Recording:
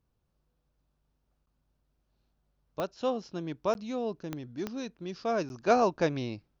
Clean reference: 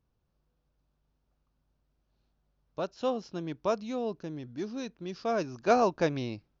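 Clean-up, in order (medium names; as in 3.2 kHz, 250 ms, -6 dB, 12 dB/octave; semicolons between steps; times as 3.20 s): de-click; interpolate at 1.46/3.74/5.49 s, 11 ms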